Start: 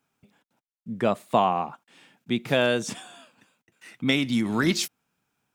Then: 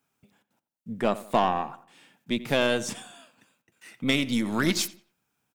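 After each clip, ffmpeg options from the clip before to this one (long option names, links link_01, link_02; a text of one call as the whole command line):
ffmpeg -i in.wav -filter_complex "[0:a]highshelf=frequency=7700:gain=6,aeval=exprs='0.473*(cos(1*acos(clip(val(0)/0.473,-1,1)))-cos(1*PI/2))+0.0299*(cos(6*acos(clip(val(0)/0.473,-1,1)))-cos(6*PI/2))':channel_layout=same,asplit=2[link_01][link_02];[link_02]adelay=89,lowpass=frequency=2500:poles=1,volume=-16dB,asplit=2[link_03][link_04];[link_04]adelay=89,lowpass=frequency=2500:poles=1,volume=0.39,asplit=2[link_05][link_06];[link_06]adelay=89,lowpass=frequency=2500:poles=1,volume=0.39[link_07];[link_01][link_03][link_05][link_07]amix=inputs=4:normalize=0,volume=-2dB" out.wav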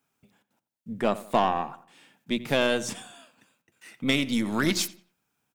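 ffmpeg -i in.wav -af "bandreject=frequency=60:width_type=h:width=6,bandreject=frequency=120:width_type=h:width=6,bandreject=frequency=180:width_type=h:width=6" out.wav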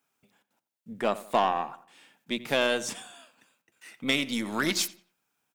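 ffmpeg -i in.wav -af "lowshelf=frequency=230:gain=-11" out.wav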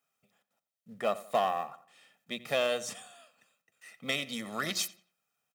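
ffmpeg -i in.wav -filter_complex "[0:a]highpass=110,aecho=1:1:1.6:0.63,asplit=2[link_01][link_02];[link_02]acrusher=bits=4:mode=log:mix=0:aa=0.000001,volume=-7dB[link_03];[link_01][link_03]amix=inputs=2:normalize=0,volume=-9dB" out.wav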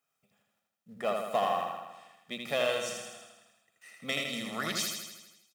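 ffmpeg -i in.wav -af "aecho=1:1:80|160|240|320|400|480|560|640|720:0.631|0.379|0.227|0.136|0.0818|0.0491|0.0294|0.0177|0.0106,volume=-1.5dB" out.wav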